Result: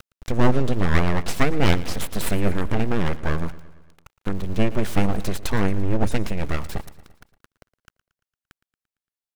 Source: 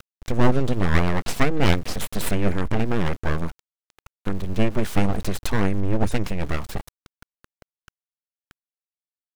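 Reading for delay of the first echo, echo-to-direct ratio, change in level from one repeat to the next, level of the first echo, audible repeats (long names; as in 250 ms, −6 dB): 114 ms, −16.5 dB, −4.5 dB, −18.5 dB, 4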